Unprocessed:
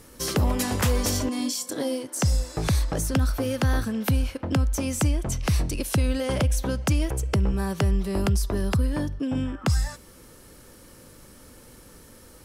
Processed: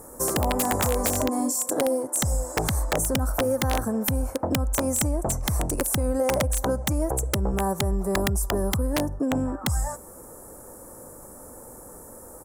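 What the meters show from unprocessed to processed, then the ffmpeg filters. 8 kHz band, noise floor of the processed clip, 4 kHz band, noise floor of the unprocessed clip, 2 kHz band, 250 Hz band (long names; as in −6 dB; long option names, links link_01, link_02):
+4.5 dB, −45 dBFS, −0.5 dB, −50 dBFS, +1.0 dB, −0.5 dB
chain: -af "firequalizer=gain_entry='entry(130,0);entry(720,13);entry(3000,-26);entry(7400,8)':delay=0.05:min_phase=1,acompressor=threshold=-20dB:ratio=4,aeval=exprs='(mod(5.31*val(0)+1,2)-1)/5.31':channel_layout=same"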